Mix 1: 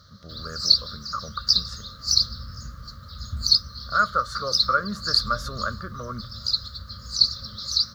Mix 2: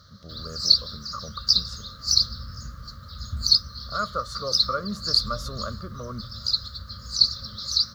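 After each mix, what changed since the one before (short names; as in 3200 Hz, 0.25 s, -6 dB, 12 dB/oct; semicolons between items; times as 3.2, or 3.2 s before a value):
speech: add bell 1600 Hz -13.5 dB 0.6 oct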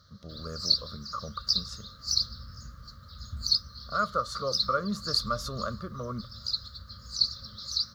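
background -7.0 dB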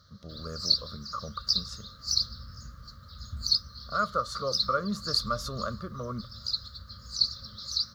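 none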